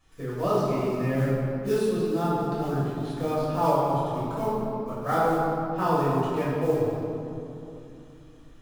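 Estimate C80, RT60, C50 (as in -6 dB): -1.0 dB, 3.0 s, -2.5 dB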